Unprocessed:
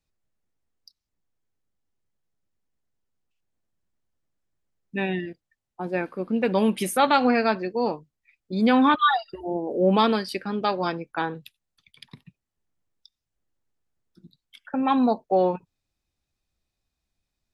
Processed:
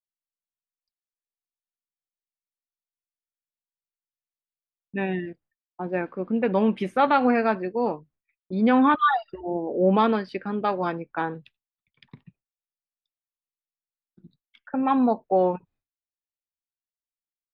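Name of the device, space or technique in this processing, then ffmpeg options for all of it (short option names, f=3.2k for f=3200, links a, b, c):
hearing-loss simulation: -af "lowpass=2.2k,agate=range=-33dB:threshold=-53dB:ratio=3:detection=peak"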